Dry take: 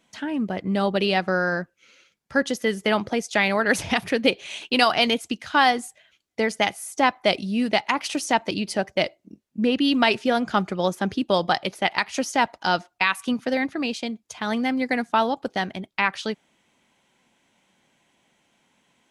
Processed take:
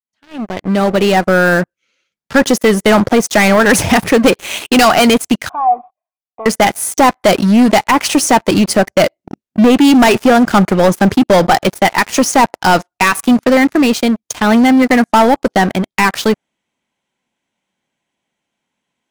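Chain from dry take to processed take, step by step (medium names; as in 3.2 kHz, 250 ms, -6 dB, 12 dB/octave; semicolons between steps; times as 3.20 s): fade-in on the opening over 1.88 s; waveshaping leveller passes 5; 5.49–6.46 s: cascade formant filter a; dynamic bell 3.5 kHz, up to -6 dB, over -26 dBFS, Q 0.84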